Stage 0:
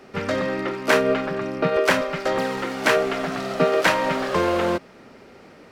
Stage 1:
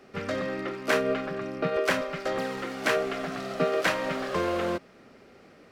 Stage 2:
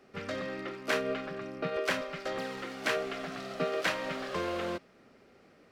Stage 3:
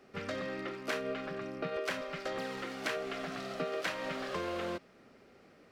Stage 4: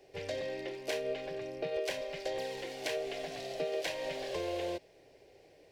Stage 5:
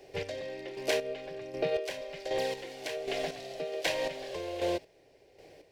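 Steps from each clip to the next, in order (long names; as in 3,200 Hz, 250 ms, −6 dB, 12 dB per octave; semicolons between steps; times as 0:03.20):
notch filter 910 Hz, Q 9.8; level −6.5 dB
dynamic equaliser 3,600 Hz, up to +4 dB, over −44 dBFS, Q 0.71; level −6.5 dB
downward compressor 2.5 to 1, threshold −34 dBFS, peak gain reduction 6.5 dB
phaser with its sweep stopped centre 530 Hz, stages 4; level +3 dB
square-wave tremolo 1.3 Hz, depth 60%, duty 30%; level +6.5 dB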